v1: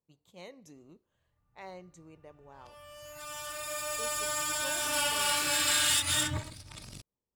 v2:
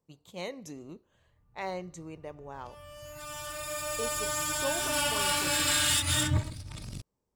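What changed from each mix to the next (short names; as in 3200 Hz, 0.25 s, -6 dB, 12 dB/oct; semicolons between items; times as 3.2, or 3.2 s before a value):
speech +10.0 dB; background: add low shelf 330 Hz +9.5 dB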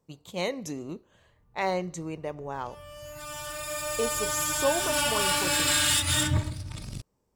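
speech +8.0 dB; background: send +10.0 dB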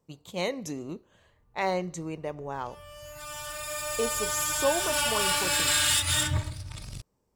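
background: add bell 250 Hz -8 dB 1.7 oct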